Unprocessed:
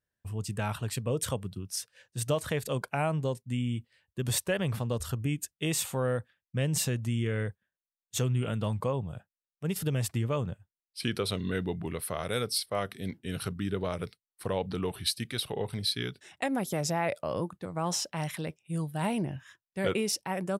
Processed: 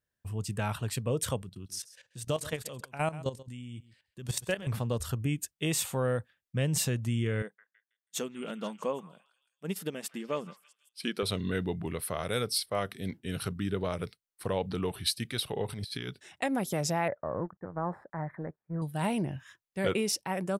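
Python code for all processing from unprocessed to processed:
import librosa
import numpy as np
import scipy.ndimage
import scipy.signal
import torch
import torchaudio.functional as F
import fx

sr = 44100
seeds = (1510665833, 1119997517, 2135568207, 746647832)

y = fx.chain(x, sr, fx.level_steps(step_db=14),
    fx.peak_eq(hz=5900.0, db=5.0, octaves=2.0),
    fx.echo_single(ms=133, db=-17.0), at=(1.42, 4.67))
y = fx.chain(y, sr, fx.brickwall_highpass(low_hz=160.0),
    fx.echo_stepped(ms=162, hz=1500.0, octaves=0.7, feedback_pct=70, wet_db=-8.5),
    fx.upward_expand(threshold_db=-43.0, expansion=1.5), at=(7.42, 11.23))
y = fx.chain(y, sr, fx.over_compress(threshold_db=-37.0, ratio=-0.5),
    fx.transient(attack_db=-1, sustain_db=4), at=(15.69, 16.09))
y = fx.chain(y, sr, fx.law_mismatch(coded='A'),
    fx.ellip_lowpass(hz=1800.0, order=4, stop_db=40), at=(17.08, 18.82))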